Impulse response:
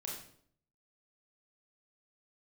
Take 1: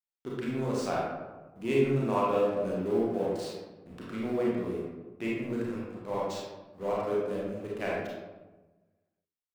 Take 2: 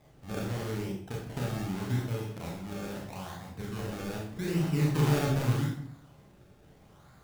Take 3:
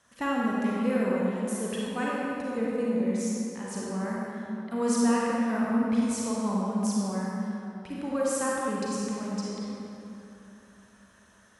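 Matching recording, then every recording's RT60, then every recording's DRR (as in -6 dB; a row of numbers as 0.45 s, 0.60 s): 2; 1.2 s, 0.60 s, 3.0 s; -6.0 dB, -3.0 dB, -5.5 dB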